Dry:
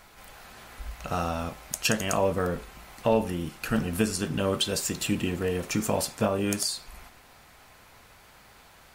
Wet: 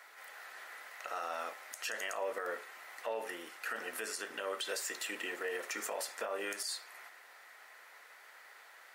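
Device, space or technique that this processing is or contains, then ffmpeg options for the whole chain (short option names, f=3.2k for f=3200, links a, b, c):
laptop speaker: -af "highpass=f=420:w=0.5412,highpass=f=420:w=1.3066,equalizer=f=1.4k:t=o:w=0.47:g=5,equalizer=f=1.9k:t=o:w=0.3:g=11.5,alimiter=limit=-22dB:level=0:latency=1:release=66,volume=-6dB"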